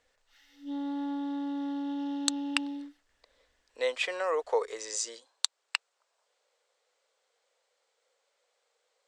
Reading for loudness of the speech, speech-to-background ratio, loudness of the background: −32.5 LKFS, 2.5 dB, −35.0 LKFS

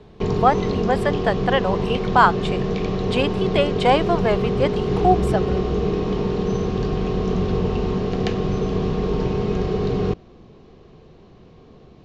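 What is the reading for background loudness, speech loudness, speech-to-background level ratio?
−23.0 LKFS, −22.0 LKFS, 1.0 dB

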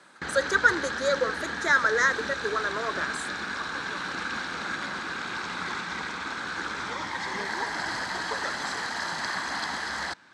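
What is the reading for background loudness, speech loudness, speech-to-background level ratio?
−31.5 LKFS, −26.0 LKFS, 5.5 dB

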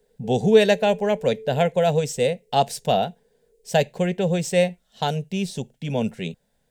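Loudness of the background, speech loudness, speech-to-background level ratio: −40.5 LKFS, −22.5 LKFS, 18.0 dB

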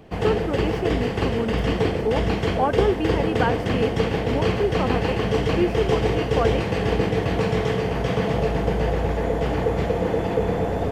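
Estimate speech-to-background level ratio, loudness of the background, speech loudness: −4.0 dB, −23.5 LKFS, −27.5 LKFS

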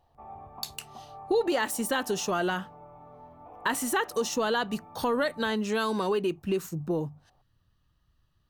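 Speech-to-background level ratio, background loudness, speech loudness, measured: 19.0 dB, −48.5 LKFS, −29.5 LKFS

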